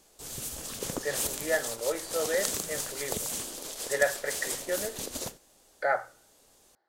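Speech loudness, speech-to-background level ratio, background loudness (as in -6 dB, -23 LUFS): -32.5 LUFS, 1.0 dB, -33.5 LUFS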